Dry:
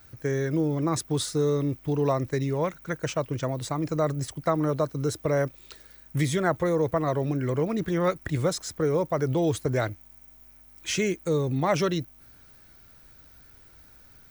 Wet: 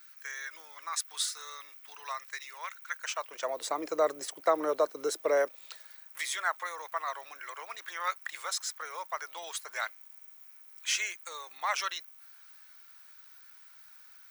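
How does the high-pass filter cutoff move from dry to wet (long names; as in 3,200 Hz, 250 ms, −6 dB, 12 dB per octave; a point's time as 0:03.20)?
high-pass filter 24 dB per octave
0:02.96 1,200 Hz
0:03.67 410 Hz
0:05.34 410 Hz
0:06.19 980 Hz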